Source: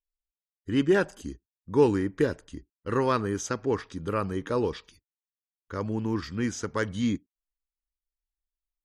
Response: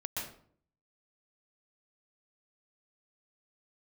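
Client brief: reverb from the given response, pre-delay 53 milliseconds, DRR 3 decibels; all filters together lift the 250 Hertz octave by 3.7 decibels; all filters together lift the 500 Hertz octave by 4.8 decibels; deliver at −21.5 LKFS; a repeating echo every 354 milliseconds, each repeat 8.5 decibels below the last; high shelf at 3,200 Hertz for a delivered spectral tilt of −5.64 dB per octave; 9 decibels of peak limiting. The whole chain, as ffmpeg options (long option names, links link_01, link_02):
-filter_complex "[0:a]equalizer=frequency=250:width_type=o:gain=3,equalizer=frequency=500:width_type=o:gain=5,highshelf=frequency=3200:gain=-3.5,alimiter=limit=-14.5dB:level=0:latency=1,aecho=1:1:354|708|1062|1416:0.376|0.143|0.0543|0.0206,asplit=2[link_01][link_02];[1:a]atrim=start_sample=2205,adelay=53[link_03];[link_02][link_03]afir=irnorm=-1:irlink=0,volume=-5dB[link_04];[link_01][link_04]amix=inputs=2:normalize=0,volume=3.5dB"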